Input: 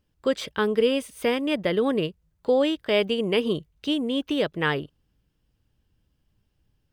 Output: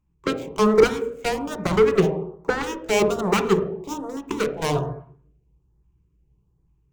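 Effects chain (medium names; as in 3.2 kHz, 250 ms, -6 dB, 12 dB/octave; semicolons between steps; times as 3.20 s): median filter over 15 samples; rippled EQ curve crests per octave 0.72, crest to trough 12 dB; Chebyshev shaper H 6 -19 dB, 7 -13 dB, 8 -20 dB, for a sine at -9 dBFS; hum notches 60/120/180 Hz; on a send at -5.5 dB: reverberation RT60 0.60 s, pre-delay 3 ms; on the sum: LFO notch saw up 1.2 Hz 390–3300 Hz; in parallel at -6.5 dB: hard clipper -21.5 dBFS, distortion -6 dB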